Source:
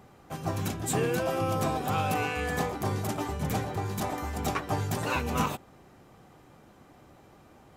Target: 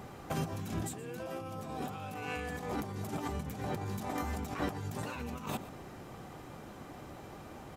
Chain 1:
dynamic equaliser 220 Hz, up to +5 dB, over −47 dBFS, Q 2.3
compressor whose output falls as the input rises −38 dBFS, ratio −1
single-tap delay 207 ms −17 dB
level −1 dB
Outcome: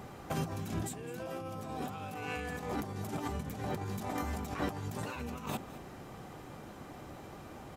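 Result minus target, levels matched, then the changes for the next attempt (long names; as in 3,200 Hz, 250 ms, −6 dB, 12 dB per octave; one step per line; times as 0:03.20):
echo 86 ms late
change: single-tap delay 121 ms −17 dB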